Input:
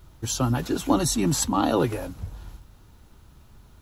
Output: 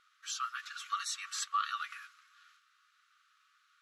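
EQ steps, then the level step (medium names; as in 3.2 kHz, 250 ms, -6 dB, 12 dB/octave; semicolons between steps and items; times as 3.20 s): brick-wall FIR high-pass 1.1 kHz; low-pass 6.8 kHz 12 dB/octave; treble shelf 2.5 kHz -10 dB; 0.0 dB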